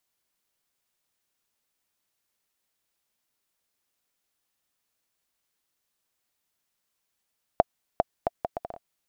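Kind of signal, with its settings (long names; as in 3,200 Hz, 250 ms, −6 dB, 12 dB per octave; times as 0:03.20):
bouncing ball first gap 0.40 s, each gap 0.67, 689 Hz, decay 27 ms −4.5 dBFS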